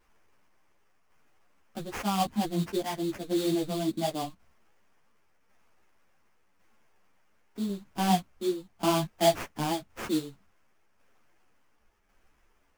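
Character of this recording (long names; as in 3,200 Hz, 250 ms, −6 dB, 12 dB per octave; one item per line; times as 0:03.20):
a quantiser's noise floor 12 bits, dither triangular
tremolo saw down 0.91 Hz, depth 45%
aliases and images of a low sample rate 4,000 Hz, jitter 20%
a shimmering, thickened sound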